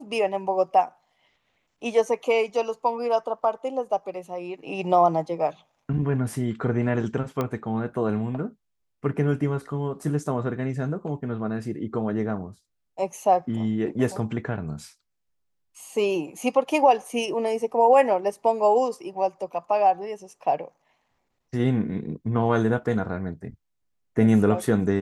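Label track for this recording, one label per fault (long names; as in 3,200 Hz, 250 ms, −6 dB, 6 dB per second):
7.410000	7.410000	click −14 dBFS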